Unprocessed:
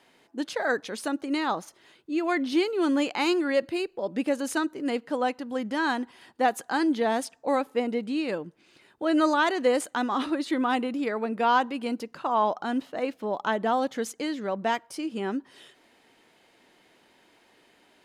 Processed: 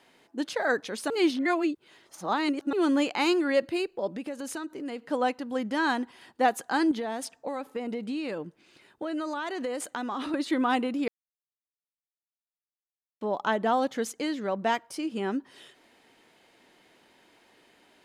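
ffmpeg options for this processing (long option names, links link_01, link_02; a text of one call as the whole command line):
ffmpeg -i in.wav -filter_complex "[0:a]asplit=3[link_01][link_02][link_03];[link_01]afade=type=out:start_time=4.12:duration=0.02[link_04];[link_02]acompressor=threshold=-34dB:ratio=3:attack=3.2:release=140:knee=1:detection=peak,afade=type=in:start_time=4.12:duration=0.02,afade=type=out:start_time=5:duration=0.02[link_05];[link_03]afade=type=in:start_time=5:duration=0.02[link_06];[link_04][link_05][link_06]amix=inputs=3:normalize=0,asettb=1/sr,asplit=3[link_07][link_08][link_09];[link_07]atrim=end=6.914[link_10];[link_08]atrim=start=6.91:end=10.34,asetpts=PTS-STARTPTS,afade=type=in:duration=0.004:curve=qsin,afade=type=out:start_time=3.426:duration=0.004:curve=qsin,acompressor=threshold=-28dB:ratio=10:attack=3.2:release=140:knee=1:detection=peak[link_11];[link_09]atrim=start=10.336[link_12];[link_10][link_11]acrossfade=duration=0.004:curve1=hsin:curve2=qsin[link_13];[link_13][link_12]acrossfade=duration=0.004:curve1=qsin:curve2=hsin,asplit=5[link_14][link_15][link_16][link_17][link_18];[link_14]atrim=end=1.102[link_19];[link_15]atrim=start=1.098:end=2.732,asetpts=PTS-STARTPTS,areverse[link_20];[link_16]atrim=start=2.728:end=11.08,asetpts=PTS-STARTPTS,afade=type=out:start_time=8.348:duration=0.004:curve=hsin[link_21];[link_17]atrim=start=11.08:end=13.21,asetpts=PTS-STARTPTS,volume=0[link_22];[link_18]atrim=start=13.21,asetpts=PTS-STARTPTS,afade=type=in:duration=0.004:curve=hsin[link_23];[link_19][link_20]acrossfade=duration=0.004:curve1=hsin:curve2=hsin[link_24];[link_21][link_22][link_23]concat=n=3:v=0:a=1[link_25];[link_24][link_25]acrossfade=duration=0.004:curve1=hsin:curve2=hsin" out.wav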